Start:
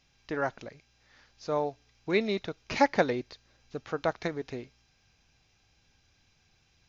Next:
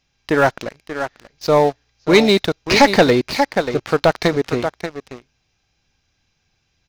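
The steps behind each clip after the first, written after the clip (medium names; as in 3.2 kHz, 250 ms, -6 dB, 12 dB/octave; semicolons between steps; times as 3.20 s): delay 585 ms -10 dB; dynamic bell 4.5 kHz, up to +6 dB, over -53 dBFS, Q 1.8; waveshaping leveller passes 3; trim +5.5 dB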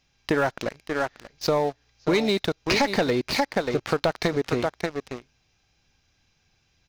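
compression 6:1, threshold -20 dBFS, peak gain reduction 12.5 dB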